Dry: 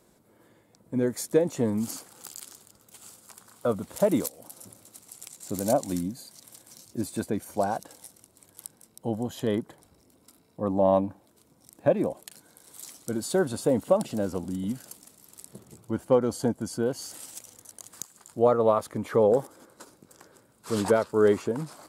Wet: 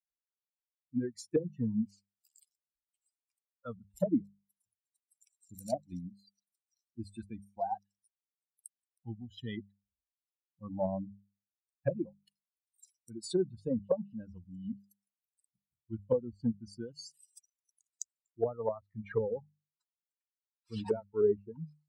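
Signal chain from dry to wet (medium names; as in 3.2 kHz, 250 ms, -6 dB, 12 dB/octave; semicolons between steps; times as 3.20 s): expander on every frequency bin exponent 3; low-pass that closes with the level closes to 360 Hz, closed at -26 dBFS; hum notches 50/100/150/200 Hz; tape noise reduction on one side only decoder only; trim +1.5 dB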